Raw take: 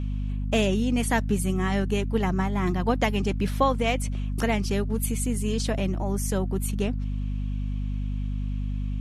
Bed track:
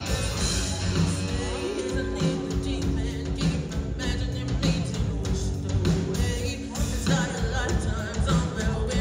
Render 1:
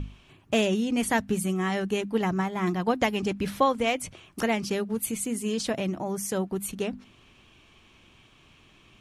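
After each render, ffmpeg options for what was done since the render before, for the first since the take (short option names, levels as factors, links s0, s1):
-af "bandreject=f=50:t=h:w=6,bandreject=f=100:t=h:w=6,bandreject=f=150:t=h:w=6,bandreject=f=200:t=h:w=6,bandreject=f=250:t=h:w=6"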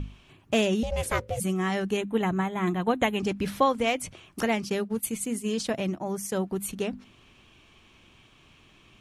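-filter_complex "[0:a]asettb=1/sr,asplit=3[s0][s1][s2];[s0]atrim=end=0.834[s3];[s1]atrim=start=0.83:end=1.4,asetpts=PTS-STARTPTS,afade=t=in:d=0.004:c=qsin,afade=t=out:st=0.566:d=0.004:c=qsin,aeval=exprs='val(0)*sin(2*PI*310*n/s)':c=same[s4];[s2]atrim=start=1.396[s5];[s3][s4]acrossfade=d=0.004:c1=hsin:c2=qsin[s6];[s6][s5]acrossfade=d=0.004:c1=qsin:c2=hsin,asettb=1/sr,asplit=3[s7][s8][s9];[s7]atrim=end=1.974[s10];[s8]atrim=start=1.97:end=3.2,asetpts=PTS-STARTPTS,afade=t=in:d=0.004:c=qsin,afade=t=out:st=1.226:d=0.004:c=qsin,asuperstop=centerf=5100:order=20:qfactor=2.5[s11];[s9]atrim=start=3.196[s12];[s10][s11]acrossfade=d=0.004:c1=hsin:c2=qsin[s13];[s13][s12]acrossfade=d=0.004:c1=qsin:c2=hsin,asettb=1/sr,asplit=3[s14][s15][s16];[s14]atrim=end=4.454[s17];[s15]atrim=start=4.45:end=6.38,asetpts=PTS-STARTPTS,afade=t=in:d=0.004:c=qsin,afade=t=out:st=1.926:d=0.004:c=qsin,agate=range=0.0224:threshold=0.0282:ratio=3:release=100:detection=peak[s18];[s16]atrim=start=6.376[s19];[s17][s18]acrossfade=d=0.004:c1=hsin:c2=qsin[s20];[s20][s19]acrossfade=d=0.004:c1=qsin:c2=hsin"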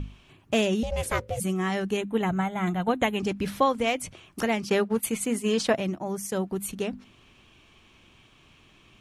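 -filter_complex "[0:a]asettb=1/sr,asplit=3[s0][s1][s2];[s0]atrim=end=2.294[s3];[s1]atrim=start=2.29:end=2.89,asetpts=PTS-STARTPTS,afade=t=in:d=0.004:c=qsin,afade=t=out:st=0.596:d=0.004:c=qsin,aecho=1:1:1.4:0.47,atrim=end_sample=26460[s4];[s2]atrim=start=2.886[s5];[s3][s4]acrossfade=d=0.004:c1=hsin:c2=qsin[s6];[s6][s5]acrossfade=d=0.004:c1=qsin:c2=hsin,asettb=1/sr,asplit=3[s7][s8][s9];[s7]atrim=end=4.684[s10];[s8]atrim=start=4.68:end=5.77,asetpts=PTS-STARTPTS,afade=t=in:d=0.004:c=qsin,afade=t=out:st=1.086:d=0.004:c=qsin,equalizer=f=1100:w=0.32:g=8.5[s11];[s9]atrim=start=5.766[s12];[s10][s11]acrossfade=d=0.004:c1=hsin:c2=qsin[s13];[s13][s12]acrossfade=d=0.004:c1=qsin:c2=hsin"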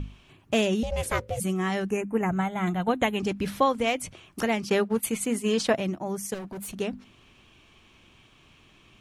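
-filter_complex "[0:a]asettb=1/sr,asplit=3[s0][s1][s2];[s0]atrim=end=1.904[s3];[s1]atrim=start=1.9:end=2.32,asetpts=PTS-STARTPTS,afade=t=in:d=0.004:c=qsin,afade=t=out:st=0.416:d=0.004:c=qsin,asuperstop=centerf=3800:order=8:qfactor=1.4[s4];[s2]atrim=start=2.316[s5];[s3][s4]acrossfade=d=0.004:c1=hsin:c2=qsin[s6];[s6][s5]acrossfade=d=0.004:c1=qsin:c2=hsin,asettb=1/sr,asplit=3[s7][s8][s9];[s7]atrim=end=6.344[s10];[s8]atrim=start=6.34:end=6.74,asetpts=PTS-STARTPTS,afade=t=in:d=0.004:c=qsin,afade=t=out:st=0.396:d=0.004:c=qsin,asoftclip=type=hard:threshold=0.0188[s11];[s9]atrim=start=6.736[s12];[s10][s11]acrossfade=d=0.004:c1=hsin:c2=qsin[s13];[s13][s12]acrossfade=d=0.004:c1=qsin:c2=hsin"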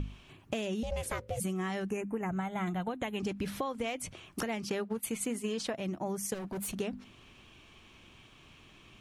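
-af "alimiter=limit=0.119:level=0:latency=1:release=377,acompressor=threshold=0.0282:ratio=6"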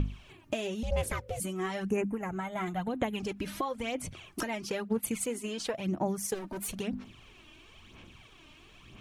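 -af "aphaser=in_gain=1:out_gain=1:delay=3.3:decay=0.54:speed=1:type=sinusoidal"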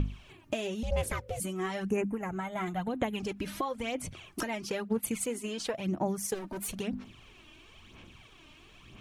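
-af anull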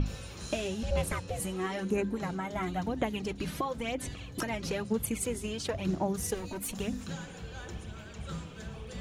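-filter_complex "[1:a]volume=0.15[s0];[0:a][s0]amix=inputs=2:normalize=0"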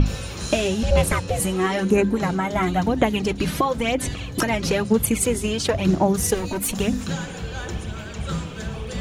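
-af "volume=3.98"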